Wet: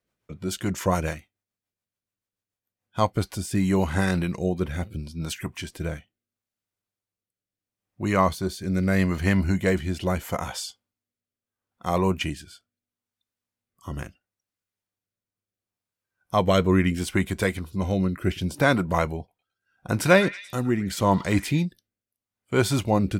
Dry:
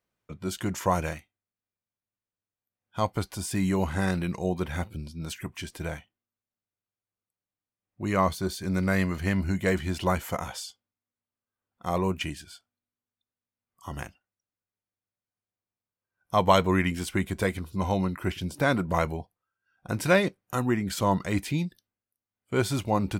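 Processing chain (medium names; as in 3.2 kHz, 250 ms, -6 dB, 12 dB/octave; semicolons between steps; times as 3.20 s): rotary cabinet horn 7 Hz, later 0.75 Hz, at 2.66 s; 19.17–21.63 s: repeats whose band climbs or falls 109 ms, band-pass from 1.7 kHz, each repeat 0.7 oct, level -11 dB; trim +5 dB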